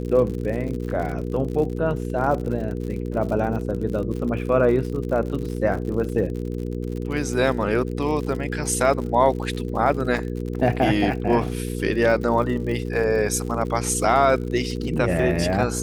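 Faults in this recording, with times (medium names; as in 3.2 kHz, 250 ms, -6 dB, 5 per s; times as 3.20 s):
crackle 64 per s -30 dBFS
hum 60 Hz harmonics 8 -28 dBFS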